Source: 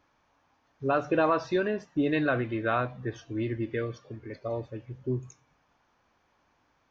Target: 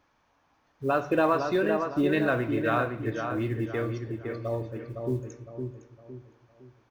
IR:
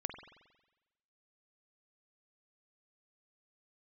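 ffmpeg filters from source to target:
-filter_complex "[0:a]acrusher=bits=9:mode=log:mix=0:aa=0.000001,asplit=2[link_01][link_02];[link_02]adelay=510,lowpass=frequency=2300:poles=1,volume=-5.5dB,asplit=2[link_03][link_04];[link_04]adelay=510,lowpass=frequency=2300:poles=1,volume=0.38,asplit=2[link_05][link_06];[link_06]adelay=510,lowpass=frequency=2300:poles=1,volume=0.38,asplit=2[link_07][link_08];[link_08]adelay=510,lowpass=frequency=2300:poles=1,volume=0.38,asplit=2[link_09][link_10];[link_10]adelay=510,lowpass=frequency=2300:poles=1,volume=0.38[link_11];[link_01][link_03][link_05][link_07][link_09][link_11]amix=inputs=6:normalize=0,asplit=2[link_12][link_13];[1:a]atrim=start_sample=2205,asetrate=57330,aresample=44100[link_14];[link_13][link_14]afir=irnorm=-1:irlink=0,volume=-2dB[link_15];[link_12][link_15]amix=inputs=2:normalize=0,volume=-3dB"

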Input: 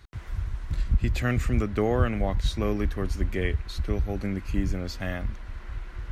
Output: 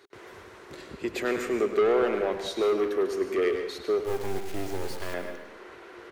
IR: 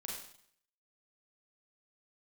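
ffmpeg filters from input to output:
-filter_complex "[0:a]highpass=frequency=400:width_type=q:width=4.9,asoftclip=type=tanh:threshold=-20dB,asettb=1/sr,asplit=3[link_01][link_02][link_03];[link_01]atrim=end=4.044[link_04];[link_02]atrim=start=4.04:end=5.14,asetpts=PTS-STARTPTS,afade=type=in:duration=0.004:curve=qsin,afade=type=out:start_time=1.096:duration=0.004:curve=qsin,acrusher=bits=4:dc=4:mix=0:aa=0.000001[link_05];[link_03]atrim=start=5.136[link_06];[link_04][link_05]acrossfade=duration=0.004:curve1=hsin:curve2=qsin[link_07];[link_07][link_06]acrossfade=duration=0.004:curve1=qsin:curve2=hsin,asplit=2[link_08][link_09];[link_09]adelay=110,highpass=300,lowpass=3400,asoftclip=type=hard:threshold=-27.5dB,volume=-9dB[link_10];[link_08][link_10]amix=inputs=2:normalize=0,asplit=2[link_11][link_12];[1:a]atrim=start_sample=2205,adelay=102[link_13];[link_12][link_13]afir=irnorm=-1:irlink=0,volume=-6dB[link_14];[link_11][link_14]amix=inputs=2:normalize=0"

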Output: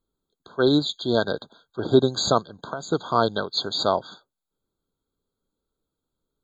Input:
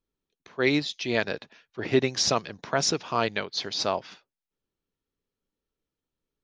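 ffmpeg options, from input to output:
ffmpeg -i in.wav -filter_complex "[0:a]asplit=3[link_01][link_02][link_03];[link_01]afade=type=out:start_time=2.42:duration=0.02[link_04];[link_02]acompressor=threshold=-34dB:ratio=8,afade=type=in:start_time=2.42:duration=0.02,afade=type=out:start_time=2.91:duration=0.02[link_05];[link_03]afade=type=in:start_time=2.91:duration=0.02[link_06];[link_04][link_05][link_06]amix=inputs=3:normalize=0,afftfilt=real='re*eq(mod(floor(b*sr/1024/1600),2),0)':imag='im*eq(mod(floor(b*sr/1024/1600),2),0)':win_size=1024:overlap=0.75,volume=5.5dB" out.wav

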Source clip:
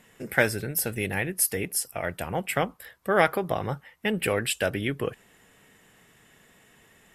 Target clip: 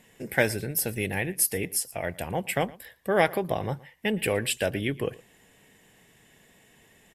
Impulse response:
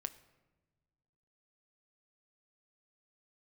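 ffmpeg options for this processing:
-filter_complex "[0:a]equalizer=frequency=1300:width_type=o:width=0.4:gain=-10,asplit=2[link_01][link_02];[link_02]aecho=0:1:115:0.0794[link_03];[link_01][link_03]amix=inputs=2:normalize=0"

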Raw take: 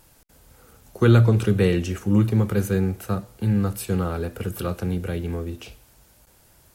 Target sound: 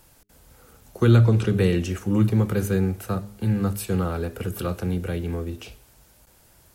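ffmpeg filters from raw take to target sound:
ffmpeg -i in.wav -filter_complex "[0:a]asettb=1/sr,asplit=3[link_01][link_02][link_03];[link_01]atrim=end=1.164[link_04];[link_02]atrim=start=1.16:end=1.57,asetpts=PTS-STARTPTS,afade=type=in:duration=0.004:curve=qsin,afade=type=out:start_time=0.406:duration=0.004:curve=qsin,acrossover=split=8100[link_05][link_06];[link_06]acompressor=threshold=-58dB:ratio=4:attack=1:release=60[link_07];[link_05][link_07]amix=inputs=2:normalize=0[link_08];[link_03]atrim=start=1.566[link_09];[link_04][link_08]acrossfade=duration=0.004:curve1=hsin:curve2=qsin[link_10];[link_10][link_09]acrossfade=duration=0.004:curve1=qsin:curve2=hsin,bandreject=frequency=102.3:width_type=h:width=4,bandreject=frequency=204.6:width_type=h:width=4,bandreject=frequency=306.9:width_type=h:width=4,bandreject=frequency=409.2:width_type=h:width=4,acrossover=split=340|3000[link_11][link_12][link_13];[link_12]acompressor=threshold=-23dB:ratio=6[link_14];[link_11][link_14][link_13]amix=inputs=3:normalize=0" out.wav

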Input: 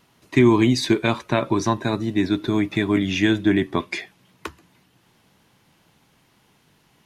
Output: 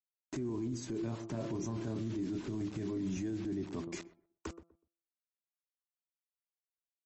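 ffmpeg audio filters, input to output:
ffmpeg -i in.wav -filter_complex "[0:a]firequalizer=gain_entry='entry(270,0);entry(850,-10);entry(2100,-20);entry(3600,-24);entry(6500,-3)':delay=0.05:min_phase=1,acrusher=bits=6:mix=0:aa=0.000001,adynamicequalizer=threshold=0.0178:dfrequency=210:dqfactor=7:tfrequency=210:tqfactor=7:attack=5:release=100:ratio=0.375:range=2:mode=cutabove:tftype=bell,asettb=1/sr,asplit=3[link_01][link_02][link_03];[link_01]atrim=end=0.914[link_04];[link_02]atrim=start=0.91:end=3.17,asetpts=PTS-STARTPTS,afade=type=in:duration=0.004:curve=qsin,afade=type=out:start_time=2.256:duration=0.004:curve=qsin,asplit=2[link_05][link_06];[link_06]adelay=27,volume=-6dB[link_07];[link_05][link_07]amix=inputs=2:normalize=0,atrim=end_sample=99666[link_08];[link_03]atrim=start=3.166[link_09];[link_04][link_08]acrossfade=duration=0.004:curve1=hsin:curve2=qsin[link_10];[link_10][link_09]acrossfade=duration=0.004:curve1=qsin:curve2=hsin,bandreject=frequency=168.8:width_type=h:width=4,bandreject=frequency=337.6:width_type=h:width=4,bandreject=frequency=506.4:width_type=h:width=4,bandreject=frequency=675.2:width_type=h:width=4,bandreject=frequency=844:width_type=h:width=4,bandreject=frequency=1012.8:width_type=h:width=4,bandreject=frequency=1181.6:width_type=h:width=4,bandreject=frequency=1350.4:width_type=h:width=4,aeval=exprs='0.531*(cos(1*acos(clip(val(0)/0.531,-1,1)))-cos(1*PI/2))+0.00944*(cos(2*acos(clip(val(0)/0.531,-1,1)))-cos(2*PI/2))+0.0133*(cos(3*acos(clip(val(0)/0.531,-1,1)))-cos(3*PI/2))+0.0188*(cos(4*acos(clip(val(0)/0.531,-1,1)))-cos(4*PI/2))+0.0075*(cos(6*acos(clip(val(0)/0.531,-1,1)))-cos(6*PI/2))':channel_layout=same,acompressor=threshold=-33dB:ratio=3,asplit=2[link_11][link_12];[link_12]adelay=123,lowpass=frequency=910:poles=1,volume=-15dB,asplit=2[link_13][link_14];[link_14]adelay=123,lowpass=frequency=910:poles=1,volume=0.24,asplit=2[link_15][link_16];[link_16]adelay=123,lowpass=frequency=910:poles=1,volume=0.24[link_17];[link_11][link_13][link_15][link_17]amix=inputs=4:normalize=0,alimiter=level_in=6.5dB:limit=-24dB:level=0:latency=1:release=10,volume=-6.5dB,volume=1dB" -ar 32000 -c:a libmp3lame -b:a 32k out.mp3

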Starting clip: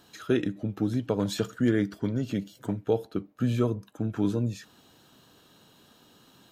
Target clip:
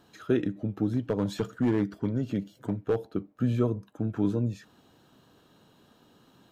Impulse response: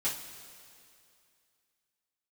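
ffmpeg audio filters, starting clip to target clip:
-filter_complex "[0:a]highshelf=frequency=2200:gain=-9,asettb=1/sr,asplit=3[link_01][link_02][link_03];[link_01]atrim=end=0.924[link_04];[link_02]atrim=start=0.92:end=3.14,asetpts=PTS-STARTPTS,afade=type=in:duration=0.004:curve=qsin,afade=type=out:start_time=2.216:duration=0.004:curve=qsin,asoftclip=type=hard:threshold=-19dB[link_05];[link_03]atrim=start=3.136[link_06];[link_04][link_05]acrossfade=duration=0.004:curve1=hsin:curve2=qsin[link_07];[link_07][link_06]acrossfade=duration=0.004:curve1=qsin:curve2=hsin"

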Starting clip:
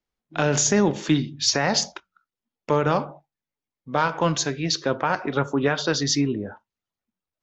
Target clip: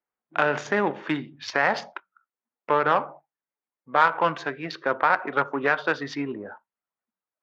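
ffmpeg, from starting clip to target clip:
ffmpeg -i in.wav -af "adynamicsmooth=sensitivity=0.5:basefreq=1400,bandpass=frequency=1700:width_type=q:width=0.89:csg=0,volume=7.5dB" out.wav

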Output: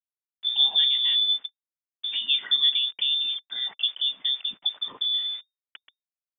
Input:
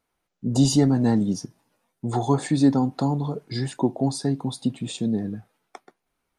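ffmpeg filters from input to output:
ffmpeg -i in.wav -filter_complex "[0:a]aeval=exprs='val(0)*gte(abs(val(0)),0.00841)':channel_layout=same,equalizer=frequency=170:width_type=o:width=0.6:gain=14.5,lowpass=frequency=3100:width_type=q:width=0.5098,lowpass=frequency=3100:width_type=q:width=0.6013,lowpass=frequency=3100:width_type=q:width=0.9,lowpass=frequency=3100:width_type=q:width=2.563,afreqshift=-3700,acrossover=split=170 2700:gain=0.0794 1 0.2[link_01][link_02][link_03];[link_01][link_02][link_03]amix=inputs=3:normalize=0" out.wav

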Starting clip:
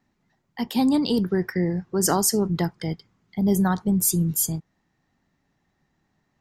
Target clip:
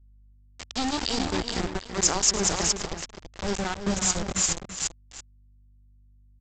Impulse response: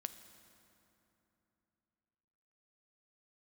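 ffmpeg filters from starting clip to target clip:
-filter_complex "[0:a]asplit=2[link_01][link_02];[link_02]aecho=0:1:417:0.708[link_03];[link_01][link_03]amix=inputs=2:normalize=0,crystalizer=i=4:c=0,aresample=16000,aeval=exprs='val(0)*gte(abs(val(0)),0.141)':channel_layout=same,aresample=44100,aeval=exprs='val(0)+0.00158*(sin(2*PI*50*n/s)+sin(2*PI*2*50*n/s)/2+sin(2*PI*3*50*n/s)/3+sin(2*PI*4*50*n/s)/4+sin(2*PI*5*50*n/s)/5)':channel_layout=same,lowshelf=frequency=100:width_type=q:width=1.5:gain=9,asplit=2[link_04][link_05];[link_05]adelay=332.4,volume=-9dB,highshelf=frequency=4000:gain=-7.48[link_06];[link_04][link_06]amix=inputs=2:normalize=0,volume=-6.5dB"

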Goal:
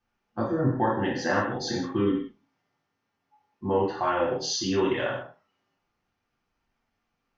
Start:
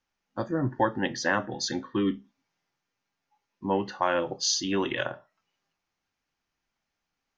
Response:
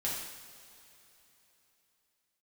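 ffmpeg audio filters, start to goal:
-filter_complex "[0:a]lowpass=frequency=1700:poles=1,asplit=2[link_01][link_02];[link_02]acompressor=threshold=-34dB:ratio=6,volume=1.5dB[link_03];[link_01][link_03]amix=inputs=2:normalize=0[link_04];[1:a]atrim=start_sample=2205,afade=type=out:start_time=0.35:duration=0.01,atrim=end_sample=15876,asetrate=66150,aresample=44100[link_05];[link_04][link_05]afir=irnorm=-1:irlink=0"

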